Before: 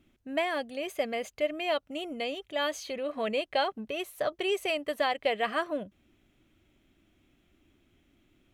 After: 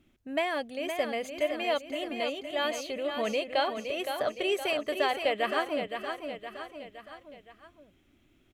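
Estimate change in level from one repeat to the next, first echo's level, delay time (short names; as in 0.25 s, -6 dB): -5.5 dB, -7.0 dB, 0.516 s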